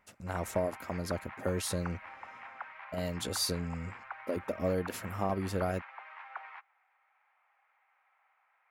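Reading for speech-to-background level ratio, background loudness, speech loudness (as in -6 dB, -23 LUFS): 11.5 dB, -47.0 LUFS, -35.5 LUFS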